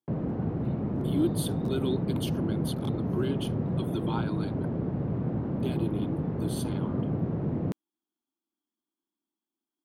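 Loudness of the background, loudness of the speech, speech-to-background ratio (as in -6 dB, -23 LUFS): -31.0 LUFS, -35.5 LUFS, -4.5 dB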